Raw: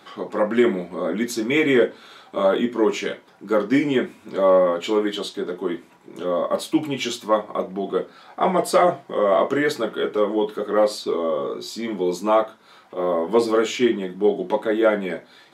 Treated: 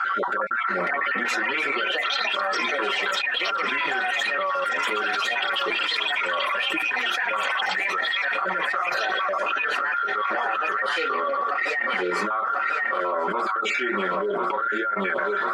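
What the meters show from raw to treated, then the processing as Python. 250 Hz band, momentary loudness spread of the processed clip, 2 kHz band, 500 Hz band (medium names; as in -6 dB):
-13.5 dB, 2 LU, +9.0 dB, -10.0 dB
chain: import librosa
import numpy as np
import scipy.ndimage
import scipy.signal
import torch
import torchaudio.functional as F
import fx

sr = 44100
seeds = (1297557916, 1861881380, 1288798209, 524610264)

p1 = fx.spec_dropout(x, sr, seeds[0], share_pct=24)
p2 = p1 + 0.52 * np.pad(p1, (int(5.2 * sr / 1000.0), 0))[:len(p1)]
p3 = fx.level_steps(p2, sr, step_db=19)
p4 = p2 + F.gain(torch.from_numpy(p3), 0.5).numpy()
p5 = fx.bandpass_q(p4, sr, hz=1400.0, q=14.0)
p6 = fx.echo_pitch(p5, sr, ms=628, semitones=5, count=3, db_per_echo=-3.0)
p7 = p6 + fx.echo_feedback(p6, sr, ms=1043, feedback_pct=40, wet_db=-15, dry=0)
p8 = fx.env_flatten(p7, sr, amount_pct=100)
y = F.gain(torch.from_numpy(p8), -5.0).numpy()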